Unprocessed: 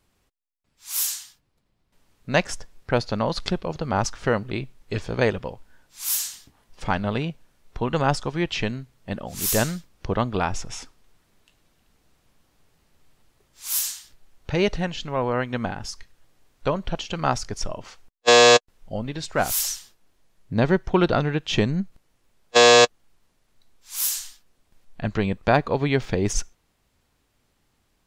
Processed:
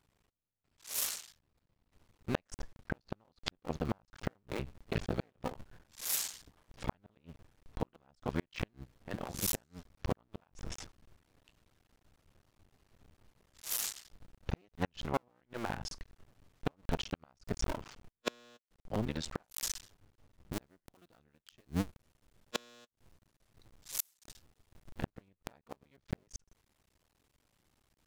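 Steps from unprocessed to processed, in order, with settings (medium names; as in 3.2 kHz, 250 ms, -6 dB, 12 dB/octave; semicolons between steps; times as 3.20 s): cycle switcher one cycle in 2, muted; treble shelf 4.6 kHz -4 dB, from 20.53 s +9.5 dB, from 21.75 s +2 dB; inverted gate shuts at -15 dBFS, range -40 dB; trim -3.5 dB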